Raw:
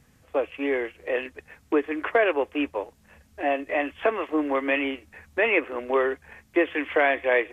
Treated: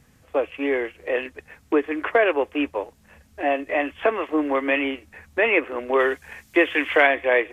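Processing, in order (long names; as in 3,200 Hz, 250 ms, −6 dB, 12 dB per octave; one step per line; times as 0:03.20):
0:05.99–0:07.07: high-shelf EQ 2,100 Hz +10 dB
level +2.5 dB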